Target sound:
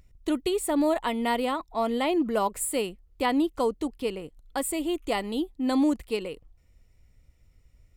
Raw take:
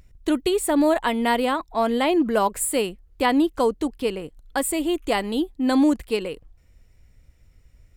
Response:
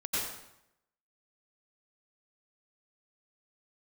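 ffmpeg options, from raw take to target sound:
-af "bandreject=f=1600:w=7.4,volume=0.562"

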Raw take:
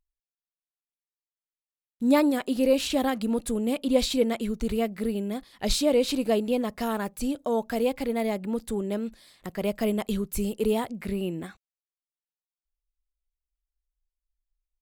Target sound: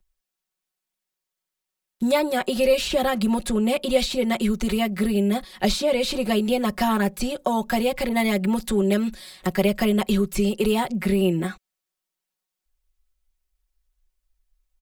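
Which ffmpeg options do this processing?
-filter_complex "[0:a]acrossover=split=150|480|1400|5900[s0][s1][s2][s3][s4];[s0]acompressor=threshold=0.00794:ratio=4[s5];[s1]acompressor=threshold=0.0178:ratio=4[s6];[s2]acompressor=threshold=0.02:ratio=4[s7];[s3]acompressor=threshold=0.0112:ratio=4[s8];[s4]acompressor=threshold=0.00316:ratio=4[s9];[s5][s6][s7][s8][s9]amix=inputs=5:normalize=0,aecho=1:1:5.4:0.95,asettb=1/sr,asplit=3[s10][s11][s12];[s10]atrim=end=8.094[s13];[s11]atrim=start=8.09:end=9.64,asetpts=PTS-STARTPTS,afade=t=in:d=0.004:c=qsin,afade=t=out:st=1.546:d=0.004:c=qsin,adynamicequalizer=threshold=0.00708:dfrequency=1500:dqfactor=0.7:tfrequency=1500:tqfactor=0.7:attack=5:release=100:ratio=0.375:range=1.5:mode=boostabove:tftype=highshelf[s14];[s12]atrim=start=9.636[s15];[s13][s14]acrossfade=d=0.004:c1=hsin:c2=qsin[s16];[s16][s15]acrossfade=d=0.004:c1=qsin:c2=hsin,volume=2.51"

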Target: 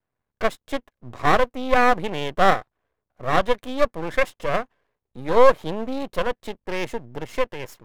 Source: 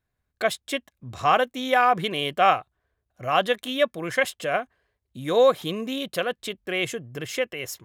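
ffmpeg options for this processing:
-af "equalizer=f=125:t=o:w=1:g=7,equalizer=f=250:t=o:w=1:g=8,equalizer=f=500:t=o:w=1:g=11,equalizer=f=1000:t=o:w=1:g=11,equalizer=f=2000:t=o:w=1:g=5,aeval=exprs='max(val(0),0)':c=same,volume=0.447"

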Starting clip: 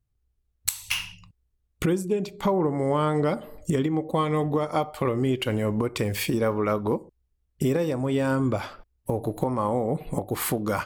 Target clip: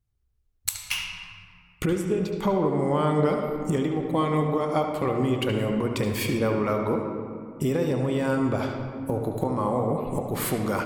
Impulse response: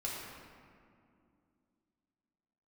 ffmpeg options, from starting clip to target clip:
-filter_complex "[0:a]asplit=2[s0][s1];[1:a]atrim=start_sample=2205,lowpass=6500,adelay=71[s2];[s1][s2]afir=irnorm=-1:irlink=0,volume=0.531[s3];[s0][s3]amix=inputs=2:normalize=0,volume=0.841"

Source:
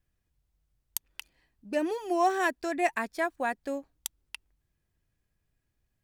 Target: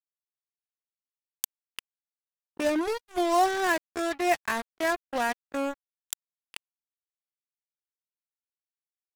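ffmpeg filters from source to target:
-af "acrusher=bits=4:mix=0:aa=0.5,atempo=0.66,volume=1.19"

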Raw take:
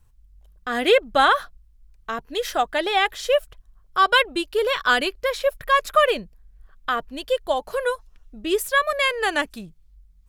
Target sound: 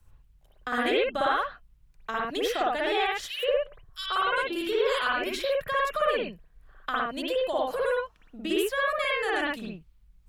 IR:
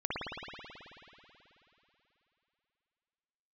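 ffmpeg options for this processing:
-filter_complex "[0:a]asettb=1/sr,asplit=3[s0][s1][s2];[s0]atrim=end=3.204[s3];[s1]atrim=start=3.2:end=5.34,asetpts=PTS-STARTPTS,afade=t=in:d=0.004:c=qsin,afade=t=out:st=2.136:d=0.004:c=qsin,acrossover=split=250|2700[s4][s5][s6];[s5]adelay=140[s7];[s4]adelay=250[s8];[s8][s7][s6]amix=inputs=3:normalize=0,atrim=end_sample=94374[s9];[s2]atrim=start=5.336[s10];[s3][s9]acrossfade=d=0.004:c1=hsin:c2=qsin[s11];[s11][s10]acrossfade=d=0.004:c1=qsin:c2=hsin,acrossover=split=120|250[s12][s13][s14];[s12]acompressor=threshold=0.002:ratio=4[s15];[s13]acompressor=threshold=0.00447:ratio=4[s16];[s14]acompressor=threshold=0.0355:ratio=4[s17];[s15][s16][s17]amix=inputs=3:normalize=0[s18];[1:a]atrim=start_sample=2205,afade=t=out:st=0.19:d=0.01,atrim=end_sample=8820[s19];[s18][s19]afir=irnorm=-1:irlink=0"

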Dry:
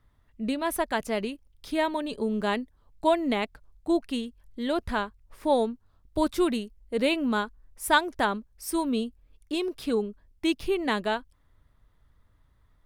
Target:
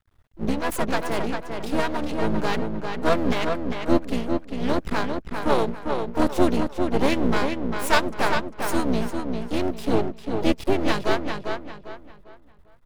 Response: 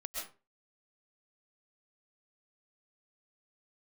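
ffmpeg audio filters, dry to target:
-filter_complex "[0:a]adynamicequalizer=threshold=0.0126:dfrequency=290:dqfactor=0.95:tfrequency=290:tqfactor=0.95:attack=5:release=100:ratio=0.375:range=2:mode=boostabove:tftype=bell,asplit=4[s0][s1][s2][s3];[s1]asetrate=29433,aresample=44100,atempo=1.49831,volume=0.141[s4];[s2]asetrate=33038,aresample=44100,atempo=1.33484,volume=0.501[s5];[s3]asetrate=66075,aresample=44100,atempo=0.66742,volume=0.224[s6];[s0][s4][s5][s6]amix=inputs=4:normalize=0,aeval=exprs='max(val(0),0)':c=same,asplit=2[s7][s8];[s8]adelay=399,lowpass=f=4200:p=1,volume=0.562,asplit=2[s9][s10];[s10]adelay=399,lowpass=f=4200:p=1,volume=0.34,asplit=2[s11][s12];[s12]adelay=399,lowpass=f=4200:p=1,volume=0.34,asplit=2[s13][s14];[s14]adelay=399,lowpass=f=4200:p=1,volume=0.34[s15];[s9][s11][s13][s15]amix=inputs=4:normalize=0[s16];[s7][s16]amix=inputs=2:normalize=0,volume=1.68"

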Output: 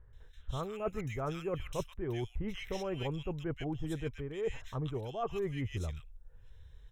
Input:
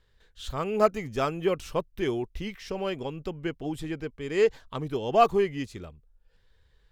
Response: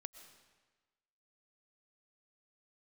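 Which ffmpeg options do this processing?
-filter_complex "[0:a]lowshelf=f=150:t=q:w=1.5:g=8,areverse,acompressor=threshold=0.02:ratio=10,areverse,asuperstop=centerf=4600:order=8:qfactor=4.6,acrossover=split=1700[s0][s1];[s1]adelay=130[s2];[s0][s2]amix=inputs=2:normalize=0,volume=1.19"

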